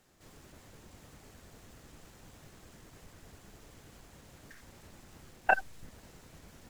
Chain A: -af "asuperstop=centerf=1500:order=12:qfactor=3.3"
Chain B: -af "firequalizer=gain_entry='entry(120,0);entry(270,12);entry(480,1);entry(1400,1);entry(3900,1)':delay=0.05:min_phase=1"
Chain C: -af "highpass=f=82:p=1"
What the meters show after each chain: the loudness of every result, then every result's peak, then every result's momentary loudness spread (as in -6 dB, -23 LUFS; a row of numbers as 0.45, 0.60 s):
-33.5, -30.0, -31.0 LUFS; -11.5, -8.5, -10.0 dBFS; 4, 4, 4 LU